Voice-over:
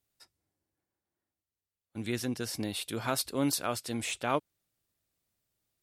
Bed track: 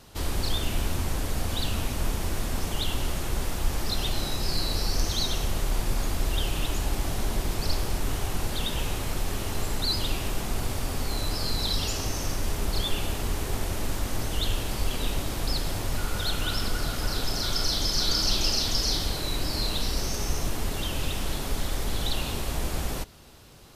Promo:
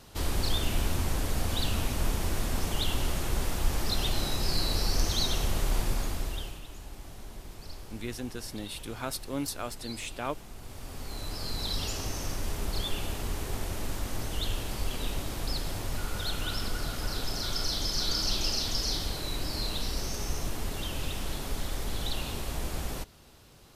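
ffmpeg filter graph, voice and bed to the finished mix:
-filter_complex "[0:a]adelay=5950,volume=-4dB[a];[1:a]volume=11dB,afade=t=out:st=5.78:d=0.83:silence=0.16788,afade=t=in:st=10.59:d=1.23:silence=0.251189[b];[a][b]amix=inputs=2:normalize=0"

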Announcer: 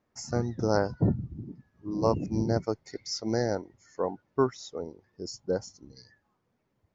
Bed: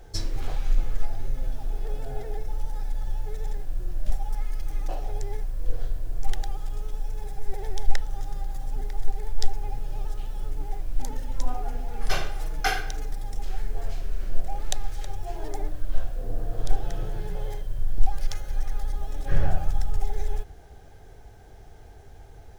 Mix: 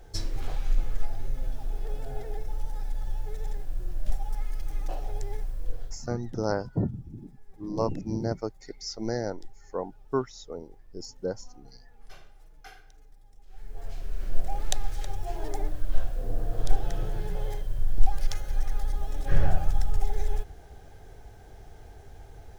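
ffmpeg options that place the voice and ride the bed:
-filter_complex "[0:a]adelay=5750,volume=-2.5dB[a];[1:a]volume=21dB,afade=t=out:st=5.49:d=0.64:silence=0.0891251,afade=t=in:st=13.47:d=1:silence=0.0668344[b];[a][b]amix=inputs=2:normalize=0"

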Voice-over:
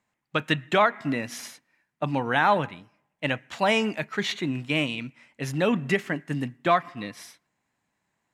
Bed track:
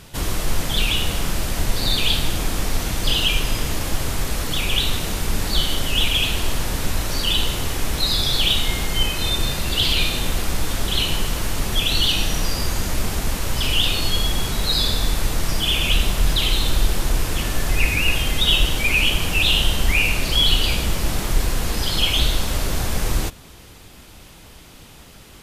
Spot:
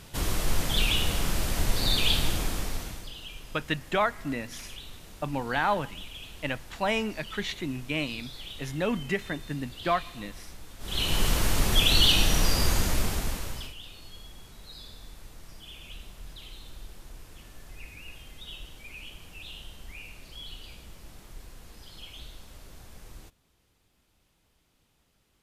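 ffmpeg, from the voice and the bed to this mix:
-filter_complex "[0:a]adelay=3200,volume=-5dB[a];[1:a]volume=17dB,afade=t=out:st=2.28:d=0.82:silence=0.11885,afade=t=in:st=10.79:d=0.49:silence=0.0794328,afade=t=out:st=12.71:d=1.03:silence=0.0595662[b];[a][b]amix=inputs=2:normalize=0"

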